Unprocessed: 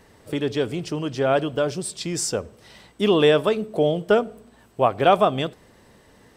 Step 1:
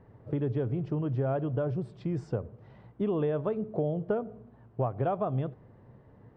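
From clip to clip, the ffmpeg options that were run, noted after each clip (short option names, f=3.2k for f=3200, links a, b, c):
-af "lowpass=1.1k,equalizer=f=120:w=2:g=13.5,acompressor=threshold=-21dB:ratio=6,volume=-5dB"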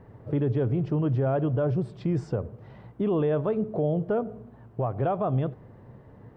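-af "alimiter=level_in=0.5dB:limit=-24dB:level=0:latency=1:release=11,volume=-0.5dB,volume=6dB"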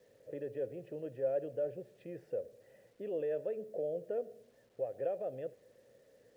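-filter_complex "[0:a]aeval=exprs='val(0)+0.00282*(sin(2*PI*50*n/s)+sin(2*PI*2*50*n/s)/2+sin(2*PI*3*50*n/s)/3+sin(2*PI*4*50*n/s)/4+sin(2*PI*5*50*n/s)/5)':c=same,asplit=3[a][b][c];[a]bandpass=f=530:t=q:w=8,volume=0dB[d];[b]bandpass=f=1.84k:t=q:w=8,volume=-6dB[e];[c]bandpass=f=2.48k:t=q:w=8,volume=-9dB[f];[d][e][f]amix=inputs=3:normalize=0,acrusher=bits=11:mix=0:aa=0.000001,volume=-1dB"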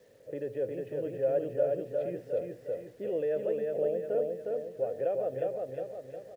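-af "aecho=1:1:359|718|1077|1436|1795|2154:0.708|0.347|0.17|0.0833|0.0408|0.02,volume=5dB"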